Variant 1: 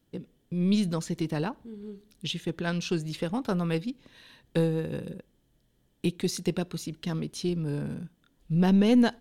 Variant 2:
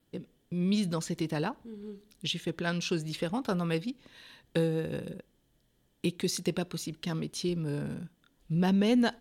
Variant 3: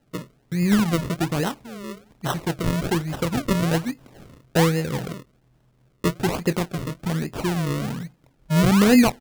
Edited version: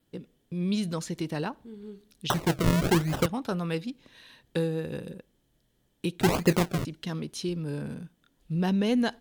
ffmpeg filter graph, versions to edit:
-filter_complex "[2:a]asplit=2[a][b];[1:a]asplit=3[c][d][e];[c]atrim=end=2.302[f];[a]atrim=start=2.298:end=3.262[g];[d]atrim=start=3.258:end=6.212[h];[b]atrim=start=6.208:end=6.852[i];[e]atrim=start=6.848[j];[f][g]acrossfade=d=0.004:c1=hsin:c2=hsin[k];[k][h]acrossfade=d=0.004:c1=hsin:c2=hsin[l];[l][i]acrossfade=d=0.004:c1=hsin:c2=hsin[m];[m][j]acrossfade=d=0.004:c1=hsin:c2=hsin"

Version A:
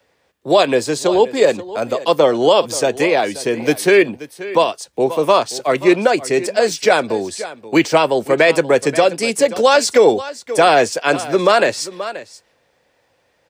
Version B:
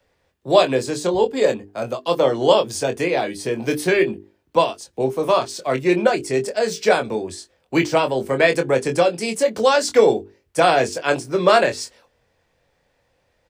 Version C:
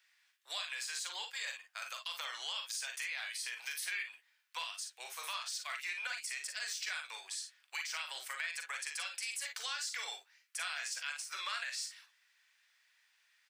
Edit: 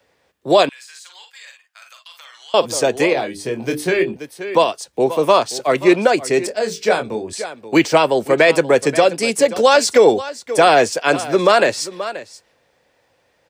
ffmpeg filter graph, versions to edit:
-filter_complex "[1:a]asplit=2[a][b];[0:a]asplit=4[c][d][e][f];[c]atrim=end=0.692[g];[2:a]atrim=start=0.688:end=2.542[h];[d]atrim=start=2.538:end=3.132[i];[a]atrim=start=3.128:end=4.162[j];[e]atrim=start=4.158:end=6.482[k];[b]atrim=start=6.478:end=7.332[l];[f]atrim=start=7.328[m];[g][h]acrossfade=d=0.004:c1=hsin:c2=hsin[n];[n][i]acrossfade=d=0.004:c1=hsin:c2=hsin[o];[o][j]acrossfade=d=0.004:c1=hsin:c2=hsin[p];[p][k]acrossfade=d=0.004:c1=hsin:c2=hsin[q];[q][l]acrossfade=d=0.004:c1=hsin:c2=hsin[r];[r][m]acrossfade=d=0.004:c1=hsin:c2=hsin"

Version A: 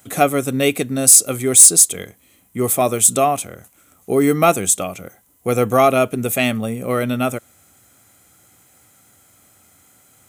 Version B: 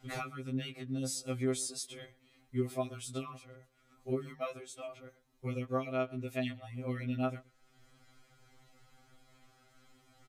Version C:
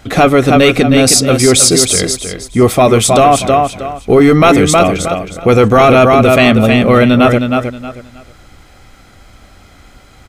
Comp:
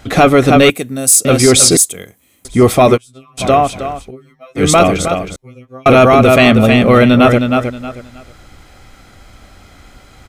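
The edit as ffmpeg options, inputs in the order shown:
-filter_complex "[0:a]asplit=2[a][b];[1:a]asplit=3[c][d][e];[2:a]asplit=6[f][g][h][i][j][k];[f]atrim=end=0.702[l];[a]atrim=start=0.698:end=1.252[m];[g]atrim=start=1.248:end=1.772[n];[b]atrim=start=1.768:end=2.452[o];[h]atrim=start=2.448:end=2.98[p];[c]atrim=start=2.94:end=3.41[q];[i]atrim=start=3.37:end=4.11[r];[d]atrim=start=4.01:end=4.65[s];[j]atrim=start=4.55:end=5.362[t];[e]atrim=start=5.358:end=5.862[u];[k]atrim=start=5.858[v];[l][m]acrossfade=d=0.004:c1=hsin:c2=hsin[w];[w][n]acrossfade=d=0.004:c1=hsin:c2=hsin[x];[x][o]acrossfade=d=0.004:c1=hsin:c2=hsin[y];[y][p]acrossfade=d=0.004:c1=hsin:c2=hsin[z];[z][q]acrossfade=d=0.04:c1=tri:c2=tri[aa];[aa][r]acrossfade=d=0.04:c1=tri:c2=tri[ab];[ab][s]acrossfade=d=0.1:c1=tri:c2=tri[ac];[ac][t]acrossfade=d=0.1:c1=tri:c2=tri[ad];[ad][u]acrossfade=d=0.004:c1=hsin:c2=hsin[ae];[ae][v]acrossfade=d=0.004:c1=hsin:c2=hsin"

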